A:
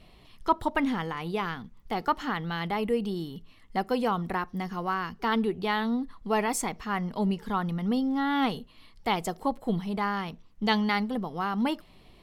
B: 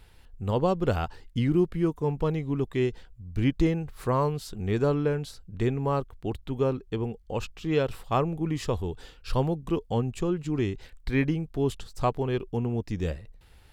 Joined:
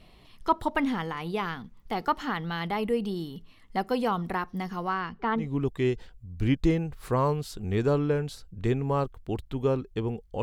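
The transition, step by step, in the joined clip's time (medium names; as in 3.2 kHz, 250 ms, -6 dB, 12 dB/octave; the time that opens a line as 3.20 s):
A
4.87–5.48 s: low-pass 7.1 kHz -> 1.1 kHz
5.41 s: go over to B from 2.37 s, crossfade 0.14 s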